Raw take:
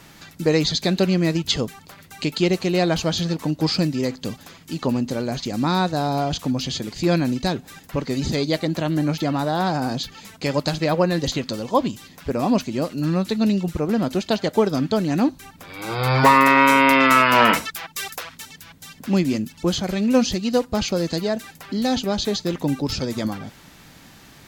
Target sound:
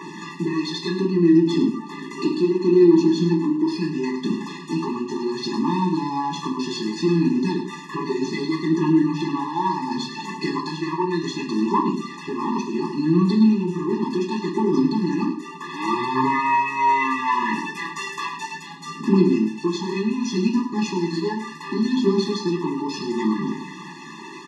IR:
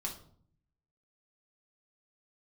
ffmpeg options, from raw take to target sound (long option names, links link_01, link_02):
-filter_complex "[0:a]aeval=exprs='if(lt(val(0),0),0.447*val(0),val(0))':channel_layout=same,asettb=1/sr,asplit=3[link_01][link_02][link_03];[link_01]atrim=end=0.984[link_04];[link_02]atrim=start=0.98:end=3.64,asetpts=PTS-STARTPTS,afade=type=in:duration=0.004:curve=qsin,afade=type=out:start_time=2.656:duration=0.004:curve=qsin,equalizer=frequency=280:width=1.5:gain=14.5[link_05];[link_03]atrim=start=3.636[link_06];[link_04][link_05]acrossfade=duration=0.004:curve1=hsin:curve2=qsin[link_07];[link_07][link_06]acrossfade=duration=0.004:curve1=qsin:curve2=hsin,acompressor=threshold=-30dB:ratio=6,asplit=2[link_08][link_09];[link_09]highpass=frequency=720:poles=1,volume=21dB,asoftclip=type=tanh:threshold=-13dB[link_10];[link_08][link_10]amix=inputs=2:normalize=0,lowpass=frequency=1100:poles=1,volume=-6dB,aphaser=in_gain=1:out_gain=1:delay=2.3:decay=0.45:speed=0.68:type=triangular,highpass=frequency=190:width=0.5412,highpass=frequency=190:width=1.3066,equalizer=frequency=430:width_type=q:width=4:gain=4,equalizer=frequency=1300:width_type=q:width=4:gain=-8,equalizer=frequency=3400:width_type=q:width=4:gain=-3,lowpass=frequency=8700:width=0.5412,lowpass=frequency=8700:width=1.3066,aecho=1:1:105:0.266[link_11];[1:a]atrim=start_sample=2205,atrim=end_sample=6174[link_12];[link_11][link_12]afir=irnorm=-1:irlink=0,afftfilt=real='re*eq(mod(floor(b*sr/1024/410),2),0)':imag='im*eq(mod(floor(b*sr/1024/410),2),0)':win_size=1024:overlap=0.75,volume=7dB"